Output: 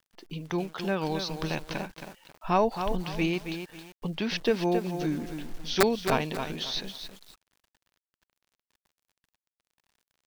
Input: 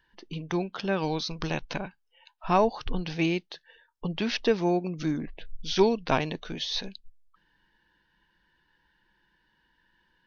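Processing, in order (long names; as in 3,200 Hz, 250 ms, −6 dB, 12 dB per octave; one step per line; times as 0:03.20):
bit reduction 10 bits
wrap-around overflow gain 10 dB
feedback echo at a low word length 271 ms, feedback 35%, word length 7 bits, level −7.5 dB
level −1.5 dB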